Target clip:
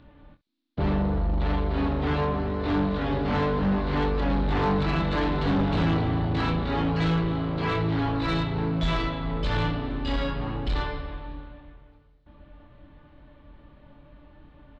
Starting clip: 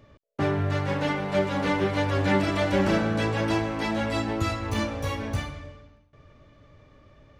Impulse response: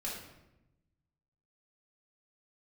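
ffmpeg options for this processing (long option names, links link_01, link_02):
-af "lowpass=frequency=8000:width_type=q:width=3.7,asetrate=22050,aresample=44100,aecho=1:1:25|66:0.501|0.133,asoftclip=type=tanh:threshold=-21.5dB,volume=2.5dB"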